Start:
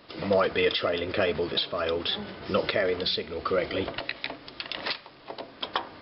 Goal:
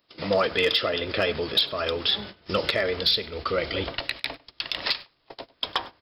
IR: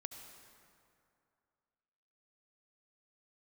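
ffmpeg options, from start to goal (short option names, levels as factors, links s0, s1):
-filter_complex "[0:a]aemphasis=mode=production:type=75kf,agate=range=0.1:threshold=0.0178:ratio=16:detection=peak,asubboost=boost=2.5:cutoff=120,volume=4.47,asoftclip=hard,volume=0.224,asplit=2[s0][s1];[s1]adelay=99.13,volume=0.0794,highshelf=f=4000:g=-2.23[s2];[s0][s2]amix=inputs=2:normalize=0"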